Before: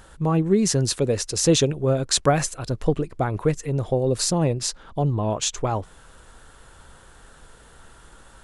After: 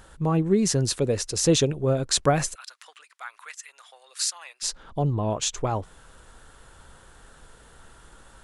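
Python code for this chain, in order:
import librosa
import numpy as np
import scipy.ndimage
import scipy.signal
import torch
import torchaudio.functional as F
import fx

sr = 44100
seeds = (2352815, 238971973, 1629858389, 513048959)

y = fx.highpass(x, sr, hz=1300.0, slope=24, at=(2.54, 4.62), fade=0.02)
y = y * librosa.db_to_amplitude(-2.0)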